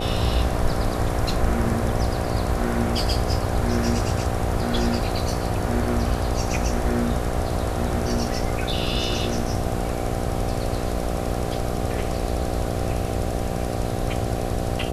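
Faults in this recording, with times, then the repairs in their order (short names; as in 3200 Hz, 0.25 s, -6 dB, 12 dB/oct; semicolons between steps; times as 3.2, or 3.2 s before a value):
buzz 60 Hz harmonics 13 -28 dBFS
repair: de-hum 60 Hz, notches 13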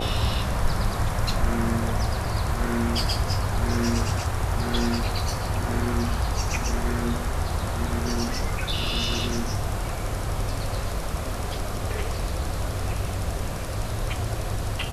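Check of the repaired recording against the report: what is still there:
none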